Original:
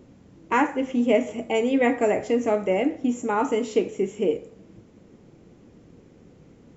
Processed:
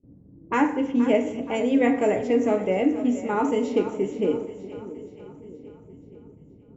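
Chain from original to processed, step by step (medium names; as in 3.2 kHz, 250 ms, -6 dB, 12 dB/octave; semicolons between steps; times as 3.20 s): high-pass 86 Hz 6 dB/octave; gate with hold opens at -43 dBFS; level-controlled noise filter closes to 360 Hz, open at -20 dBFS; bass shelf 210 Hz +10 dB; two-band feedback delay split 440 Hz, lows 627 ms, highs 475 ms, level -13 dB; FDN reverb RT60 0.88 s, low-frequency decay 0.95×, high-frequency decay 0.75×, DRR 9.5 dB; trim -3 dB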